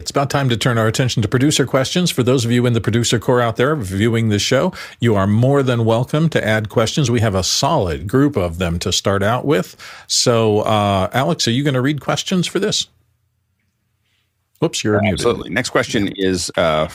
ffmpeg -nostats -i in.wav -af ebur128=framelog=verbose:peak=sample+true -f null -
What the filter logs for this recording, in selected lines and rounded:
Integrated loudness:
  I:         -16.5 LUFS
  Threshold: -27.0 LUFS
Loudness range:
  LRA:         4.9 LU
  Threshold: -37.0 LUFS
  LRA low:   -20.7 LUFS
  LRA high:  -15.9 LUFS
Sample peak:
  Peak:       -1.7 dBFS
True peak:
  Peak:       -1.7 dBFS